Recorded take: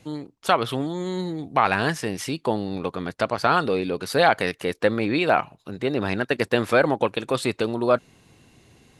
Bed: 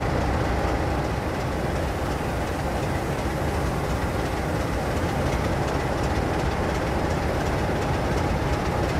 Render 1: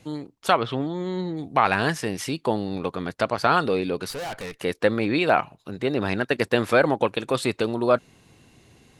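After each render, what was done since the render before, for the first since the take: 0.58–1.37 air absorption 140 m; 4.1–4.61 tube stage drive 30 dB, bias 0.45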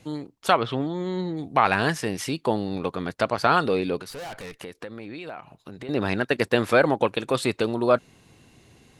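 4.01–5.89 compressor 5:1, threshold -35 dBFS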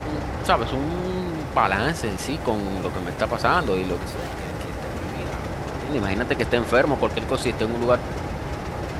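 add bed -5.5 dB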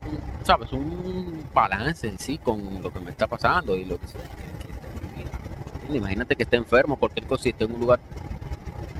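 per-bin expansion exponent 1.5; transient shaper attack +4 dB, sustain -8 dB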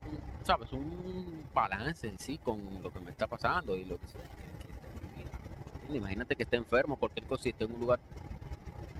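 gain -10.5 dB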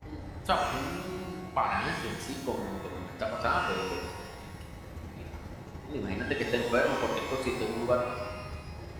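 shimmer reverb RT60 1.4 s, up +12 st, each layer -8 dB, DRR -1 dB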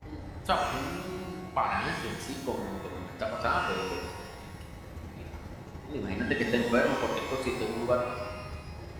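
6.19–6.94 small resonant body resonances 210/1900 Hz, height 9 dB

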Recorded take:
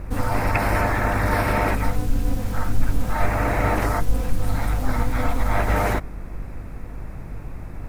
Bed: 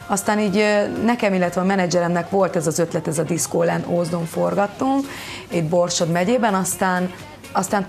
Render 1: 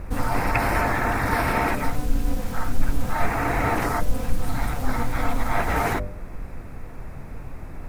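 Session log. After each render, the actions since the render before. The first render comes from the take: de-hum 50 Hz, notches 12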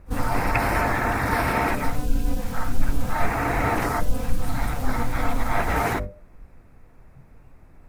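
noise print and reduce 14 dB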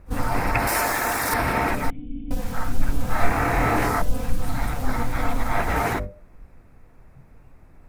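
0.67–1.34 tone controls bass -11 dB, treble +14 dB; 1.9–2.31 vocal tract filter i; 3.08–4.02 doubler 26 ms -2 dB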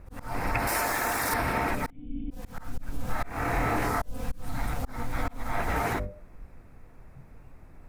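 auto swell 0.346 s; compressor 2:1, threshold -28 dBFS, peak gain reduction 8 dB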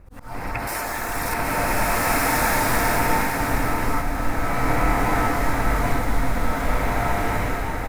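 echo 0.776 s -8.5 dB; bloom reverb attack 1.56 s, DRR -7.5 dB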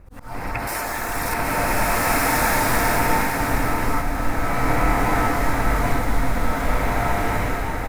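gain +1 dB

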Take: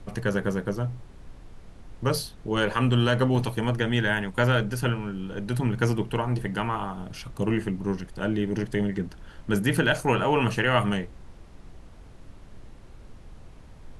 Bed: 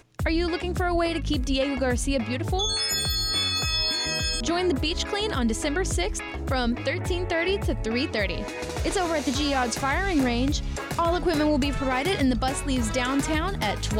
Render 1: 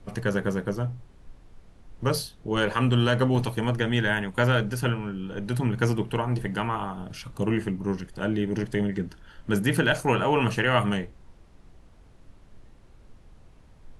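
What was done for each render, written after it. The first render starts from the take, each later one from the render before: noise print and reduce 6 dB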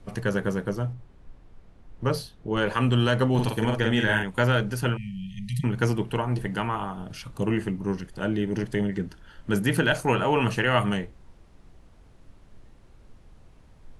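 0.93–2.66 high shelf 4300 Hz -9 dB; 3.34–4.23 doubler 46 ms -3 dB; 4.97–5.64 brick-wall FIR band-stop 220–1800 Hz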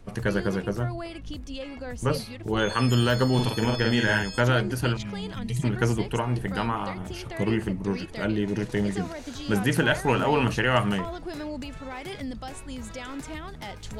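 add bed -12 dB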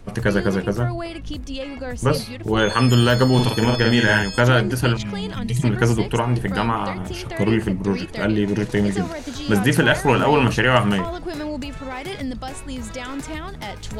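gain +6.5 dB; limiter -3 dBFS, peak gain reduction 2 dB

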